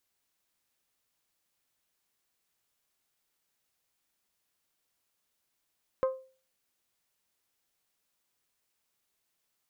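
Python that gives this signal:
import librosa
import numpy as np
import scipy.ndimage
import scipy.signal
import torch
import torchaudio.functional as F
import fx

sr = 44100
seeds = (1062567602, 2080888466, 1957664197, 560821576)

y = fx.strike_glass(sr, length_s=0.89, level_db=-21.5, body='bell', hz=524.0, decay_s=0.39, tilt_db=8.5, modes=5)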